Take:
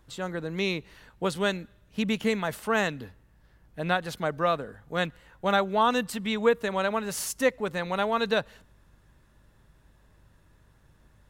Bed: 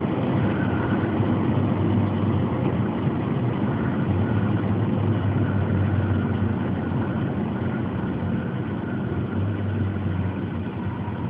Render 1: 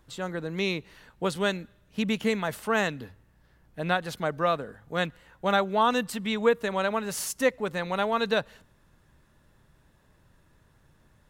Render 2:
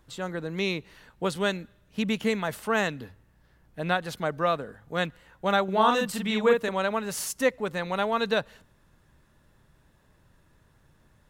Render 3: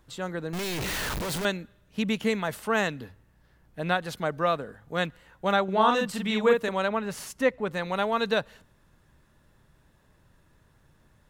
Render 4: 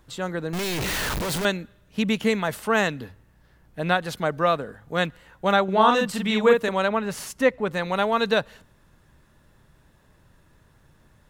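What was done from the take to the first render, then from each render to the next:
de-hum 50 Hz, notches 2
5.64–6.69 doubler 42 ms -3 dB
0.53–1.45 infinite clipping; 5.53–6.2 high shelf 9100 Hz -8.5 dB; 6.88–7.72 tone controls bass +2 dB, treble -9 dB
gain +4 dB

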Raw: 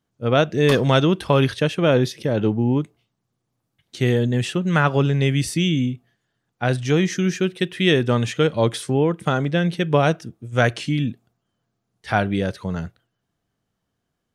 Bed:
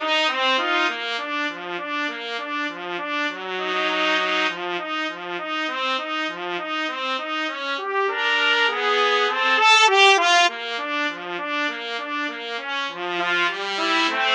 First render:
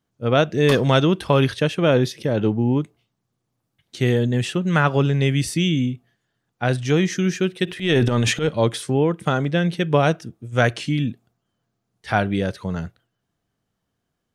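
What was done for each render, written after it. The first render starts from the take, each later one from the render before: 7.65–8.49 transient shaper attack -11 dB, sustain +10 dB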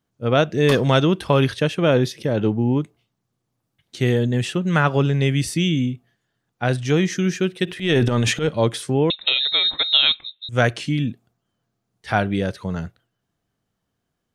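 9.1–10.49 inverted band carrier 3900 Hz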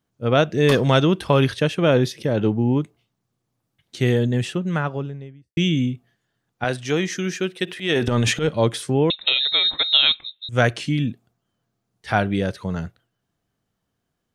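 4.17–5.57 studio fade out; 6.64–8.08 HPF 320 Hz 6 dB/oct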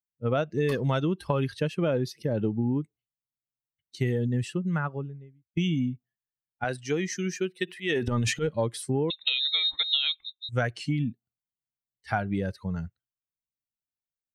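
per-bin expansion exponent 1.5; compressor, threshold -23 dBFS, peak gain reduction 10.5 dB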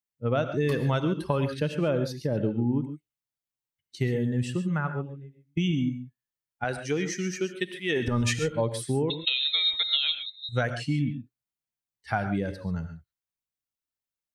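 non-linear reverb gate 0.16 s rising, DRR 8.5 dB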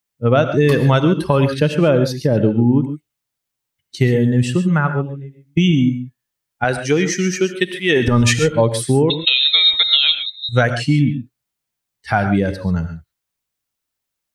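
gain +12 dB; limiter -2 dBFS, peak gain reduction 2.5 dB

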